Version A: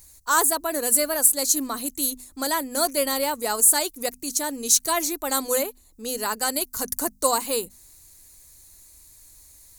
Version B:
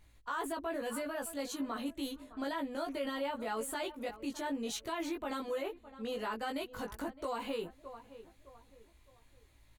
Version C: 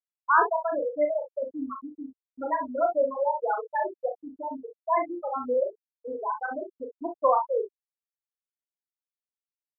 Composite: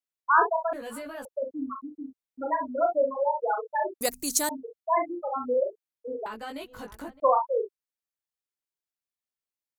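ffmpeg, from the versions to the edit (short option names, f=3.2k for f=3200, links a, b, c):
-filter_complex "[1:a]asplit=2[a][b];[2:a]asplit=4[c][d][e][f];[c]atrim=end=0.732[g];[a]atrim=start=0.728:end=1.252[h];[d]atrim=start=1.248:end=4.012[i];[0:a]atrim=start=4.008:end=4.492[j];[e]atrim=start=4.488:end=6.262[k];[b]atrim=start=6.258:end=7.202[l];[f]atrim=start=7.198[m];[g][h]acrossfade=d=0.004:c1=hsin:c2=hsin[n];[n][i]acrossfade=d=0.004:c1=hsin:c2=hsin[o];[o][j]acrossfade=d=0.004:c1=hsin:c2=hsin[p];[p][k]acrossfade=d=0.004:c1=hsin:c2=hsin[q];[q][l]acrossfade=d=0.004:c1=hsin:c2=hsin[r];[r][m]acrossfade=d=0.004:c1=hsin:c2=hsin"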